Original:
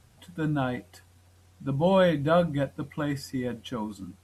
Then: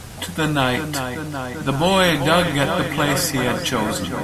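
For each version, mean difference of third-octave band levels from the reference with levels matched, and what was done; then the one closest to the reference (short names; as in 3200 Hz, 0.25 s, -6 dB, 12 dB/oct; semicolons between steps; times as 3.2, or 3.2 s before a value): 14.0 dB: on a send: darkening echo 0.387 s, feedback 70%, low-pass 3400 Hz, level -13.5 dB; on the sum: spectral compressor 2:1; gain +7.5 dB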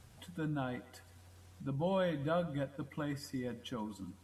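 4.0 dB: thinning echo 0.125 s, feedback 42%, high-pass 400 Hz, level -18.5 dB; compressor 1.5:1, threshold -52 dBFS, peak gain reduction 12.5 dB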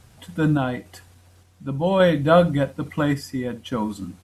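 2.0 dB: random-step tremolo 3.5 Hz; on a send: echo 70 ms -20.5 dB; on the sum: gain +8.5 dB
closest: third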